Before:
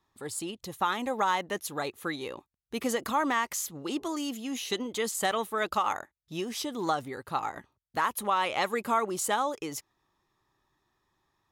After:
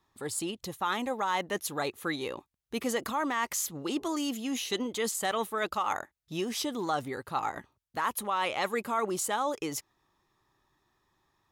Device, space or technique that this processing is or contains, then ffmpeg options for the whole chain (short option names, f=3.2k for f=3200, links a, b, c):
compression on the reversed sound: -af "areverse,acompressor=threshold=-28dB:ratio=6,areverse,volume=2dB"